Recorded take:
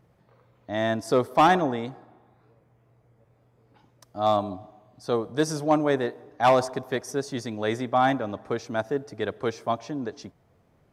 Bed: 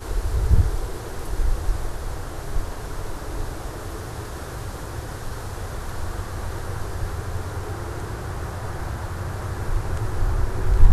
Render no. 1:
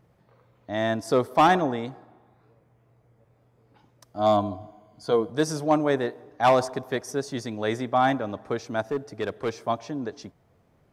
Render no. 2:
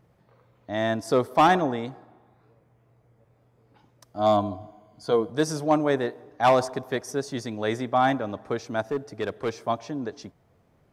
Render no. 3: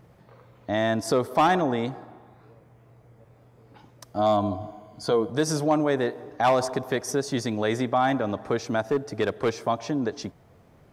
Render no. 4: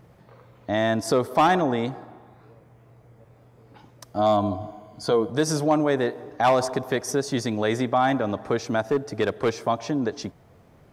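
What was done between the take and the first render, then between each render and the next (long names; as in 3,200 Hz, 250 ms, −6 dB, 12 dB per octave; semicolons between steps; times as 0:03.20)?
0:04.18–0:05.30: EQ curve with evenly spaced ripples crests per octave 1.8, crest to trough 11 dB; 0:08.81–0:09.57: gain into a clipping stage and back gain 21 dB
no processing that can be heard
in parallel at +3 dB: brickwall limiter −20 dBFS, peak gain reduction 9 dB; on the sum: downward compressor 1.5 to 1, threshold −27 dBFS, peak gain reduction 6 dB
level +1.5 dB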